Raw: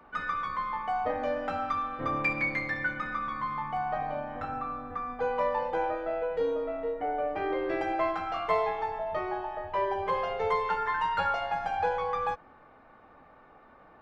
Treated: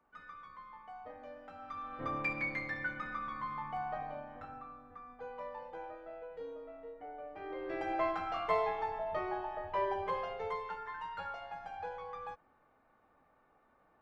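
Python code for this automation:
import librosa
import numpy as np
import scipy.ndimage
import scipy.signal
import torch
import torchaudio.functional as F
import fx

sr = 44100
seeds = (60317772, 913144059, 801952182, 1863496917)

y = fx.gain(x, sr, db=fx.line((1.54, -19.0), (1.98, -7.0), (3.84, -7.0), (4.85, -16.0), (7.31, -16.0), (7.97, -4.5), (9.9, -4.5), (10.84, -14.0)))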